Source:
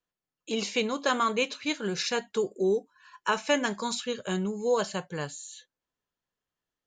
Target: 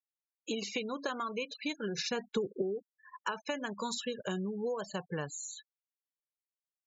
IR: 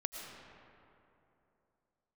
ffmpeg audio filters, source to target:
-filter_complex "[0:a]acompressor=threshold=-34dB:ratio=16,asettb=1/sr,asplit=3[link_01][link_02][link_03];[link_01]atrim=end=1.984[link_04];[link_02]atrim=start=1.98:end=2.62,asetpts=PTS-STARTPTS,afade=type=in:duration=0.004:curve=qsin,afade=type=out:start_time=0.636:duration=0.004:curve=qsin,lowshelf=frequency=250:gain=10[link_05];[link_03]atrim=start=2.616[link_06];[link_04][link_05]acrossfade=duration=0.004:curve1=hsin:curve2=qsin[link_07];[link_07][link_06]acrossfade=duration=0.004:curve1=qsin:curve2=hsin,afftfilt=real='re*gte(hypot(re,im),0.00891)':imag='im*gte(hypot(re,im),0.00891)':win_size=1024:overlap=0.75,volume=2dB"

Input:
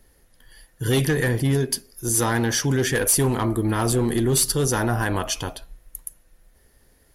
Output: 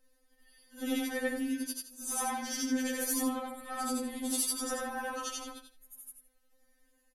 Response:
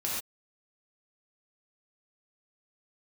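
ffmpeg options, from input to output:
-af "afftfilt=real='re':imag='-im':win_size=8192:overlap=0.75,aecho=1:1:75|150:0.2|0.0419,afftfilt=real='re*3.46*eq(mod(b,12),0)':imag='im*3.46*eq(mod(b,12),0)':win_size=2048:overlap=0.75,volume=-5dB"

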